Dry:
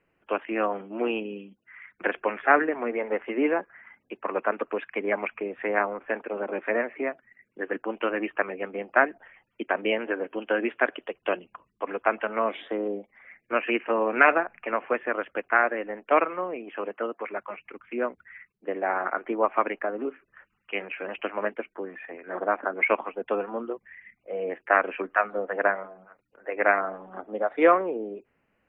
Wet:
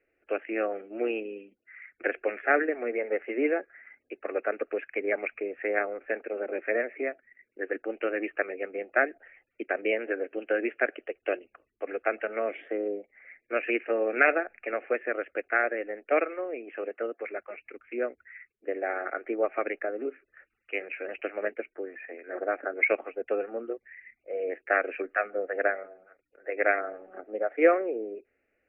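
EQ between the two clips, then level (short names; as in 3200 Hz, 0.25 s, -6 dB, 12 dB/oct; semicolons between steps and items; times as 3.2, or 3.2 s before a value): steep low-pass 2500 Hz 48 dB/oct; low shelf 390 Hz -8 dB; fixed phaser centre 410 Hz, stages 4; +3.0 dB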